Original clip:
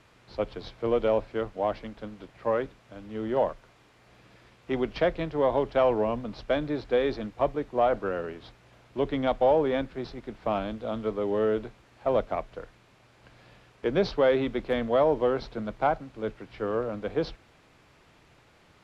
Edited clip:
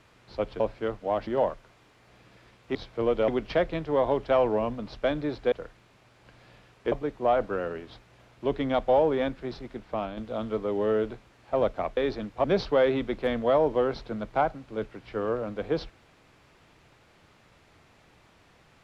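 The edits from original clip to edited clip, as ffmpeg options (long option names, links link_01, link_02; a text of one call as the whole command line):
ffmpeg -i in.wav -filter_complex "[0:a]asplit=10[link_01][link_02][link_03][link_04][link_05][link_06][link_07][link_08][link_09][link_10];[link_01]atrim=end=0.602[link_11];[link_02]atrim=start=1.128:end=1.802[link_12];[link_03]atrim=start=3.258:end=4.742[link_13];[link_04]atrim=start=0.598:end=1.132[link_14];[link_05]atrim=start=4.738:end=6.982[link_15];[link_06]atrim=start=12.498:end=13.902[link_16];[link_07]atrim=start=7.448:end=10.7,asetpts=PTS-STARTPTS,afade=type=out:start_time=2.822:duration=0.43:silence=0.473151[link_17];[link_08]atrim=start=10.7:end=12.502,asetpts=PTS-STARTPTS,afade=type=in:duration=0.004:curve=hsin:silence=0.473151[link_18];[link_09]atrim=start=6.978:end=7.452[link_19];[link_10]atrim=start=13.898[link_20];[link_11][link_12]acrossfade=duration=0.004:curve1=hsin:curve2=hsin[link_21];[link_21][link_13]acrossfade=duration=0.004:curve1=hsin:curve2=hsin[link_22];[link_22][link_14]acrossfade=duration=0.004:curve1=hsin:curve2=hsin[link_23];[link_23][link_15]acrossfade=duration=0.004:curve1=hsin:curve2=hsin[link_24];[link_24][link_16]acrossfade=duration=0.004:curve1=hsin:curve2=hsin[link_25];[link_17][link_18]concat=n=2:v=0:a=1[link_26];[link_25][link_26]acrossfade=duration=0.004:curve1=hsin:curve2=hsin[link_27];[link_27][link_19]acrossfade=duration=0.004:curve1=hsin:curve2=hsin[link_28];[link_28][link_20]acrossfade=duration=0.004:curve1=hsin:curve2=hsin" out.wav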